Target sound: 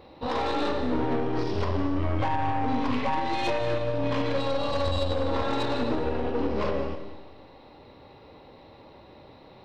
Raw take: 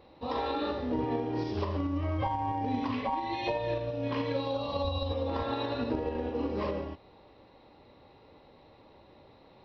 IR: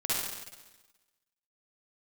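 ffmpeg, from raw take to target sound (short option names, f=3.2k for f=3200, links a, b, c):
-filter_complex "[0:a]aeval=exprs='(tanh(35.5*val(0)+0.5)-tanh(0.5))/35.5':c=same,asplit=2[a][b];[1:a]atrim=start_sample=2205,asetrate=48510,aresample=44100,adelay=117[c];[b][c]afir=irnorm=-1:irlink=0,volume=-17dB[d];[a][d]amix=inputs=2:normalize=0,volume=8.5dB"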